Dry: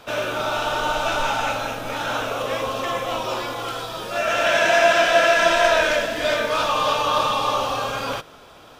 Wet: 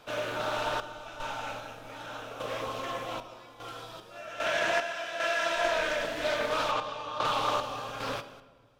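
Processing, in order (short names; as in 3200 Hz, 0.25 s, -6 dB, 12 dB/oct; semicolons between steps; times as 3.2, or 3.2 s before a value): 4.82–5.58 low shelf 360 Hz -9.5 dB; random-step tremolo 2.5 Hz, depth 85%; 6.71–7.25 air absorption 56 m; reverb RT60 1.4 s, pre-delay 7 ms, DRR 11 dB; Doppler distortion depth 0.25 ms; gain -7.5 dB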